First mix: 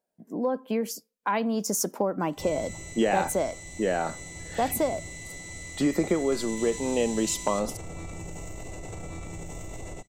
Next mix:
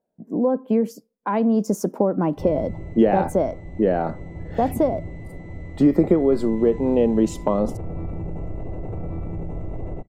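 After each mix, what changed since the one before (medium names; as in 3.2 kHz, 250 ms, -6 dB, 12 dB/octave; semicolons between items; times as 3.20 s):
background: add low-pass 2.1 kHz 12 dB/octave; master: add tilt shelf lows +10 dB, about 1.2 kHz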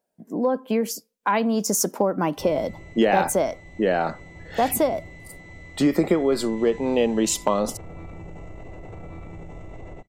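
speech +5.0 dB; master: add tilt shelf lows -10 dB, about 1.2 kHz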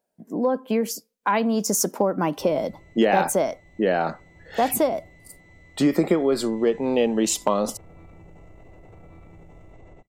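background -8.5 dB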